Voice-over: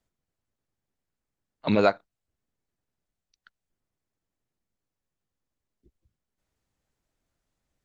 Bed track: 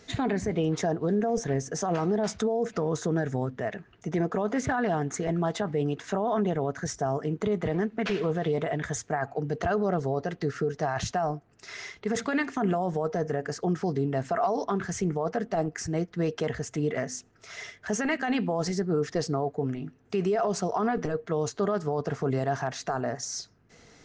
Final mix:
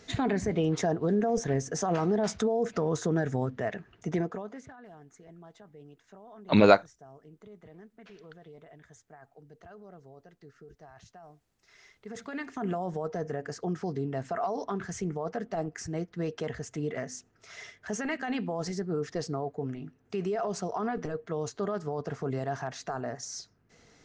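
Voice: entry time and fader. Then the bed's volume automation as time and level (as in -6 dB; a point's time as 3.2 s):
4.85 s, +2.5 dB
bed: 4.14 s -0.5 dB
4.76 s -23.5 dB
11.38 s -23.5 dB
12.73 s -5 dB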